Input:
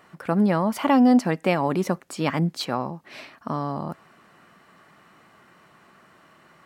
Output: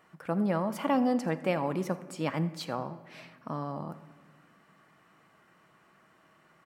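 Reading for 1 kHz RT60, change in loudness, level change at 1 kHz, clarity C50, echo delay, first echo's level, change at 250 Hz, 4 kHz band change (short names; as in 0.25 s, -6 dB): 1.3 s, -8.5 dB, -8.0 dB, 14.0 dB, 82 ms, -20.0 dB, -9.5 dB, -9.5 dB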